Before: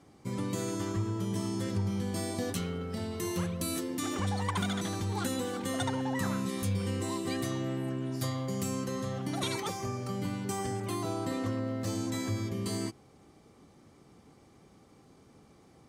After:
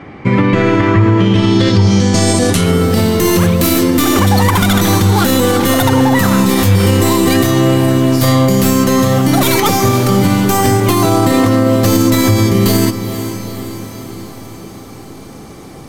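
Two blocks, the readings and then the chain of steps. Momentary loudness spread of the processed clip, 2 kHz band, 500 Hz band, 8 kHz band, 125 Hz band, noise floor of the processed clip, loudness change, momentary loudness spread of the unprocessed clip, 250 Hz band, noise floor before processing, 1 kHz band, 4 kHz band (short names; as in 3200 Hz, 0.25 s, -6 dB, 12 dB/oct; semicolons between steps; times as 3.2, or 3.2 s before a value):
8 LU, +23.0 dB, +23.0 dB, +21.0 dB, +22.5 dB, -32 dBFS, +22.5 dB, 3 LU, +22.5 dB, -60 dBFS, +22.5 dB, +22.0 dB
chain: tracing distortion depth 0.32 ms; diffused feedback echo 0.466 s, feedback 61%, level -13 dB; low-pass sweep 2200 Hz -> 14000 Hz, 1.05–2.9; maximiser +25.5 dB; gain -1 dB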